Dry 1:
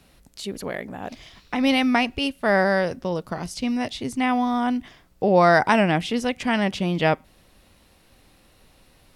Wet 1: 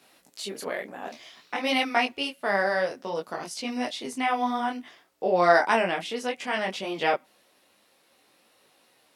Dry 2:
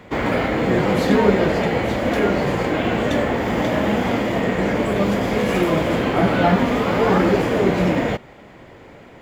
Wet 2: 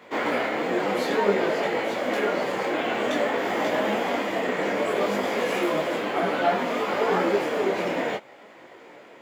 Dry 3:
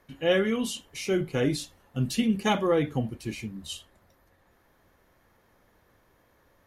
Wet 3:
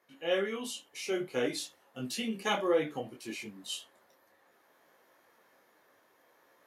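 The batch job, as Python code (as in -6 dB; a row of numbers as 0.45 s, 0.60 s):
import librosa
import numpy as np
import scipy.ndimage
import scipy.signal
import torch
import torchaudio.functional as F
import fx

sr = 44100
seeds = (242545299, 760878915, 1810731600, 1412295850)

y = scipy.signal.sosfilt(scipy.signal.butter(2, 360.0, 'highpass', fs=sr, output='sos'), x)
y = fx.rider(y, sr, range_db=4, speed_s=2.0)
y = fx.detune_double(y, sr, cents=20)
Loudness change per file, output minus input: -4.5 LU, -6.0 LU, -6.5 LU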